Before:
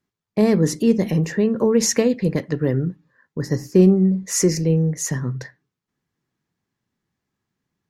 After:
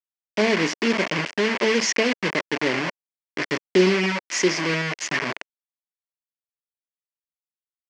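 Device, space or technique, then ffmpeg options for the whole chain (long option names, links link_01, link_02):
hand-held game console: -af "acrusher=bits=3:mix=0:aa=0.000001,highpass=460,equalizer=frequency=490:width_type=q:width=4:gain=-9,equalizer=frequency=790:width_type=q:width=4:gain=-8,equalizer=frequency=1300:width_type=q:width=4:gain=-7,equalizer=frequency=2100:width_type=q:width=4:gain=4,equalizer=frequency=3800:width_type=q:width=4:gain=-9,lowpass=frequency=4900:width=0.5412,lowpass=frequency=4900:width=1.3066,volume=5.5dB"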